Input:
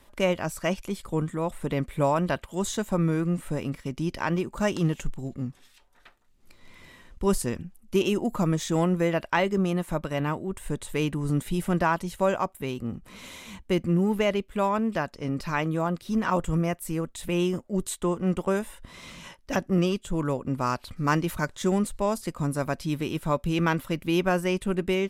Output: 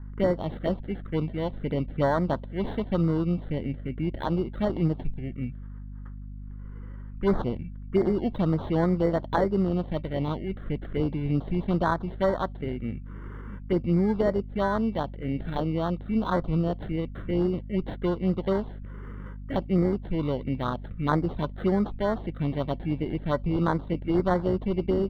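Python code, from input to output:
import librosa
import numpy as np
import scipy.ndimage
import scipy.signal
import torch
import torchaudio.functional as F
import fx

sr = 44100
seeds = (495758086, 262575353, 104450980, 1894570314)

y = fx.low_shelf(x, sr, hz=320.0, db=-4.0)
y = fx.sample_hold(y, sr, seeds[0], rate_hz=2500.0, jitter_pct=0)
y = fx.add_hum(y, sr, base_hz=50, snr_db=13)
y = fx.env_phaser(y, sr, low_hz=540.0, high_hz=2800.0, full_db=-21.0)
y = fx.air_absorb(y, sr, metres=450.0)
y = y * librosa.db_to_amplitude(3.5)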